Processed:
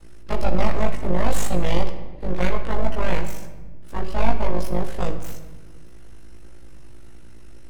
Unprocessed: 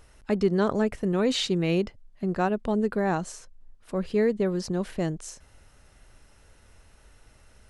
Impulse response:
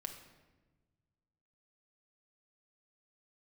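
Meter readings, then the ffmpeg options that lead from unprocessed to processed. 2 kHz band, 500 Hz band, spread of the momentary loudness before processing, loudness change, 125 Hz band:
+2.5 dB, −1.5 dB, 10 LU, 0.0 dB, +3.5 dB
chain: -filter_complex "[0:a]aeval=exprs='val(0)+0.00316*(sin(2*PI*60*n/s)+sin(2*PI*2*60*n/s)/2+sin(2*PI*3*60*n/s)/3+sin(2*PI*4*60*n/s)/4+sin(2*PI*5*60*n/s)/5)':channel_layout=same,aeval=exprs='val(0)*sin(2*PI*25*n/s)':channel_layout=same,aeval=exprs='abs(val(0))':channel_layout=same,asplit=2[link_01][link_02];[1:a]atrim=start_sample=2205,asetrate=43218,aresample=44100,adelay=17[link_03];[link_02][link_03]afir=irnorm=-1:irlink=0,volume=5dB[link_04];[link_01][link_04]amix=inputs=2:normalize=0,volume=1.5dB"

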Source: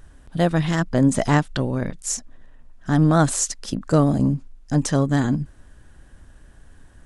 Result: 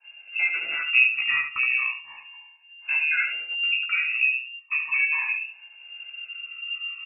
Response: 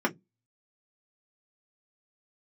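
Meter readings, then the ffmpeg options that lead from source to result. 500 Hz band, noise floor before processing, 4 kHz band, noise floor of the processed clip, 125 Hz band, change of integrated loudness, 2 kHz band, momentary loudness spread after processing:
below −30 dB, −50 dBFS, can't be measured, −52 dBFS, below −40 dB, −1.5 dB, +11.5 dB, 17 LU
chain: -filter_complex "[0:a]afftfilt=real='re*pow(10,21/40*sin(2*PI*(1.2*log(max(b,1)*sr/1024/100)/log(2)-(0.35)*(pts-256)/sr)))':imag='im*pow(10,21/40*sin(2*PI*(1.2*log(max(b,1)*sr/1024/100)/log(2)-(0.35)*(pts-256)/sr)))':win_size=1024:overlap=0.75,agate=range=-33dB:threshold=-43dB:ratio=3:detection=peak,aemphasis=mode=reproduction:type=75fm,acompressor=threshold=-30dB:ratio=2,flanger=delay=3:depth=4.9:regen=-27:speed=1.5:shape=triangular,asplit=2[link_01][link_02];[link_02]adelay=16,volume=-4.5dB[link_03];[link_01][link_03]amix=inputs=2:normalize=0,asplit=2[link_04][link_05];[link_05]aecho=0:1:71|142|213:0.422|0.0886|0.0186[link_06];[link_04][link_06]amix=inputs=2:normalize=0,lowpass=frequency=2400:width_type=q:width=0.5098,lowpass=frequency=2400:width_type=q:width=0.6013,lowpass=frequency=2400:width_type=q:width=0.9,lowpass=frequency=2400:width_type=q:width=2.563,afreqshift=-2800,adynamicequalizer=threshold=0.0141:dfrequency=1900:dqfactor=0.7:tfrequency=1900:tqfactor=0.7:attack=5:release=100:ratio=0.375:range=2:mode=boostabove:tftype=highshelf"

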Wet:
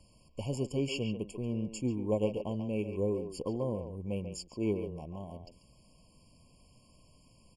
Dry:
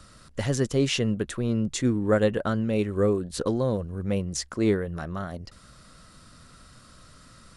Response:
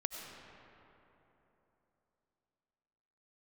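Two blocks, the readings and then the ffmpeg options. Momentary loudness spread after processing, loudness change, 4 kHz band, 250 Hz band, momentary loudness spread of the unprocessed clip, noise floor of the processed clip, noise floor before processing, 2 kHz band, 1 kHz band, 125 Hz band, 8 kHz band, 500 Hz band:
11 LU, −8.5 dB, −11.0 dB, −8.5 dB, 10 LU, −63 dBFS, −53 dBFS, −14.0 dB, −11.0 dB, −9.0 dB, −13.0 dB, −8.0 dB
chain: -filter_complex "[0:a]aeval=exprs='0.299*(cos(1*acos(clip(val(0)/0.299,-1,1)))-cos(1*PI/2))+0.0211*(cos(3*acos(clip(val(0)/0.299,-1,1)))-cos(3*PI/2))+0.00211*(cos(5*acos(clip(val(0)/0.299,-1,1)))-cos(5*PI/2))':channel_layout=same,asplit=2[link_01][link_02];[link_02]adelay=140,highpass=300,lowpass=3400,asoftclip=type=hard:threshold=-20dB,volume=-7dB[link_03];[link_01][link_03]amix=inputs=2:normalize=0,afftfilt=real='re*eq(mod(floor(b*sr/1024/1100),2),0)':imag='im*eq(mod(floor(b*sr/1024/1100),2),0)':win_size=1024:overlap=0.75,volume=-7.5dB"

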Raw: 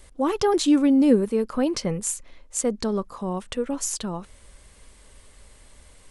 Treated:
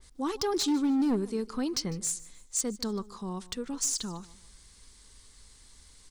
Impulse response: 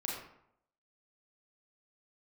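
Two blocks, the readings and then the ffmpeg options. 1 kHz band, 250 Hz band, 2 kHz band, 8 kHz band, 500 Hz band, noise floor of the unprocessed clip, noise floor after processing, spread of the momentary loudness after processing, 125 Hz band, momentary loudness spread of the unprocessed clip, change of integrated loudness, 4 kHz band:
−8.0 dB, −8.0 dB, −7.5 dB, −2.0 dB, −10.5 dB, −52 dBFS, −57 dBFS, 11 LU, −7.0 dB, 13 LU, −7.0 dB, −1.5 dB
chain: -af "lowpass=5100,equalizer=frequency=590:width_type=o:width=0.53:gain=-11.5,aexciter=amount=5:drive=5.1:freq=3900,acrusher=bits=11:mix=0:aa=0.000001,asoftclip=type=hard:threshold=-16.5dB,aecho=1:1:151|302|453:0.1|0.032|0.0102,adynamicequalizer=threshold=0.0112:dfrequency=3000:dqfactor=0.7:tfrequency=3000:tqfactor=0.7:attack=5:release=100:ratio=0.375:range=2:mode=cutabove:tftype=highshelf,volume=-6.5dB"

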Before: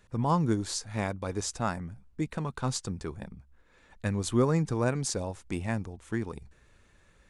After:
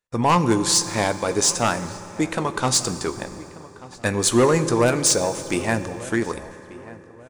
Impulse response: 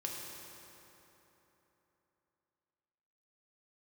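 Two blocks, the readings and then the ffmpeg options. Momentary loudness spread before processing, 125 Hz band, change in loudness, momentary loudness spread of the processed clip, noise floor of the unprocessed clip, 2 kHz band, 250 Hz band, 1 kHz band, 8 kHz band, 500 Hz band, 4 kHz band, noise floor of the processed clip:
13 LU, +4.0 dB, +10.5 dB, 17 LU, −62 dBFS, +13.0 dB, +8.0 dB, +11.5 dB, +16.5 dB, +11.5 dB, +15.5 dB, −45 dBFS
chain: -filter_complex "[0:a]agate=range=-36dB:threshold=-54dB:ratio=16:detection=peak,bass=frequency=250:gain=-12,treble=frequency=4000:gain=4,aeval=exprs='0.266*sin(PI/2*3.16*val(0)/0.266)':channel_layout=same,asplit=2[link_01][link_02];[link_02]adelay=1187,lowpass=frequency=2400:poles=1,volume=-19dB,asplit=2[link_03][link_04];[link_04]adelay=1187,lowpass=frequency=2400:poles=1,volume=0.36,asplit=2[link_05][link_06];[link_06]adelay=1187,lowpass=frequency=2400:poles=1,volume=0.36[link_07];[link_01][link_03][link_05][link_07]amix=inputs=4:normalize=0,asplit=2[link_08][link_09];[1:a]atrim=start_sample=2205,adelay=17[link_10];[link_09][link_10]afir=irnorm=-1:irlink=0,volume=-10.5dB[link_11];[link_08][link_11]amix=inputs=2:normalize=0"

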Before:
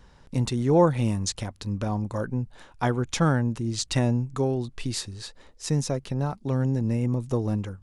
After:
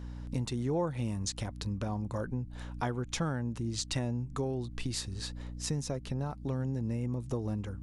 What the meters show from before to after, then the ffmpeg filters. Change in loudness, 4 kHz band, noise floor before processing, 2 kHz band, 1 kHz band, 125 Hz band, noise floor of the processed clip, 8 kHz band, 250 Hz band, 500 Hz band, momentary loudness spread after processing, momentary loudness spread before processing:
−9.0 dB, −5.5 dB, −54 dBFS, −8.5 dB, −10.0 dB, −8.5 dB, −45 dBFS, −5.5 dB, −9.0 dB, −10.0 dB, 5 LU, 10 LU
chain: -af "aeval=exprs='val(0)+0.01*(sin(2*PI*60*n/s)+sin(2*PI*2*60*n/s)/2+sin(2*PI*3*60*n/s)/3+sin(2*PI*4*60*n/s)/4+sin(2*PI*5*60*n/s)/5)':channel_layout=same,acompressor=threshold=-34dB:ratio=2.5"

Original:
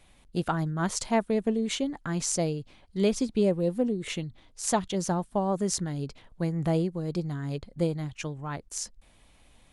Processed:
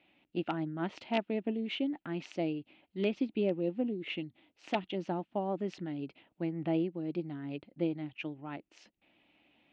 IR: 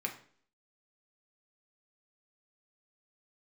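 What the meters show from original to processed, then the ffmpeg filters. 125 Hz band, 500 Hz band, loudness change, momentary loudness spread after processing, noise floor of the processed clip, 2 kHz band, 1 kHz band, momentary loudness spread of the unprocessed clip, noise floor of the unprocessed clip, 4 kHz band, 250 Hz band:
−11.0 dB, −6.5 dB, −6.5 dB, 9 LU, −81 dBFS, −4.0 dB, −7.5 dB, 10 LU, −59 dBFS, −6.5 dB, −5.0 dB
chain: -af "aeval=exprs='(mod(4.73*val(0)+1,2)-1)/4.73':channel_layout=same,highpass=230,equalizer=frequency=310:width_type=q:width=4:gain=8,equalizer=frequency=470:width_type=q:width=4:gain=-6,equalizer=frequency=1100:width_type=q:width=4:gain=-9,equalizer=frequency=1600:width_type=q:width=4:gain=-5,equalizer=frequency=2700:width_type=q:width=4:gain=7,lowpass=frequency=3100:width=0.5412,lowpass=frequency=3100:width=1.3066,volume=-4.5dB"

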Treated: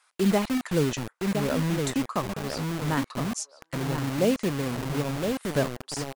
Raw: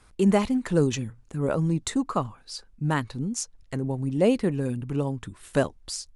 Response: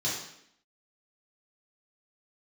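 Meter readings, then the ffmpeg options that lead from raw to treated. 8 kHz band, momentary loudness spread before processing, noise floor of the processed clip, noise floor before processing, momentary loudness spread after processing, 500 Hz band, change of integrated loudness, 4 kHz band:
0.0 dB, 12 LU, −67 dBFS, −56 dBFS, 7 LU, −1.5 dB, −1.0 dB, +2.5 dB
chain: -filter_complex "[0:a]asplit=2[link_01][link_02];[link_02]adelay=1015,lowpass=frequency=1000:poles=1,volume=-5dB,asplit=2[link_03][link_04];[link_04]adelay=1015,lowpass=frequency=1000:poles=1,volume=0.36,asplit=2[link_05][link_06];[link_06]adelay=1015,lowpass=frequency=1000:poles=1,volume=0.36,asplit=2[link_07][link_08];[link_08]adelay=1015,lowpass=frequency=1000:poles=1,volume=0.36[link_09];[link_01][link_03][link_05][link_07][link_09]amix=inputs=5:normalize=0,acrossover=split=700|4900[link_10][link_11][link_12];[link_10]acrusher=bits=4:mix=0:aa=0.000001[link_13];[link_13][link_11][link_12]amix=inputs=3:normalize=0,volume=-2.5dB"

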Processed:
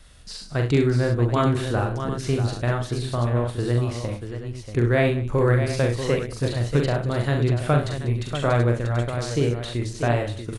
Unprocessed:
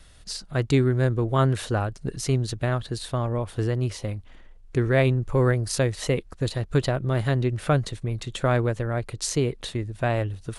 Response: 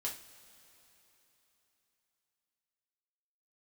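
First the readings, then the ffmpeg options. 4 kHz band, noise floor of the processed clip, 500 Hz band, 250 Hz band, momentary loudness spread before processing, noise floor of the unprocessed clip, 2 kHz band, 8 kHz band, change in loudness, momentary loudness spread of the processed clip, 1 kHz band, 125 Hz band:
+0.5 dB, −39 dBFS, +2.0 dB, +2.0 dB, 9 LU, −48 dBFS, +2.0 dB, −4.5 dB, +2.0 dB, 7 LU, +2.0 dB, +2.0 dB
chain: -filter_complex "[0:a]aecho=1:1:42|67|102|193|637|732:0.596|0.316|0.133|0.112|0.376|0.251,acrossover=split=4200[link_01][link_02];[link_02]acompressor=threshold=-40dB:ratio=4:attack=1:release=60[link_03];[link_01][link_03]amix=inputs=2:normalize=0"

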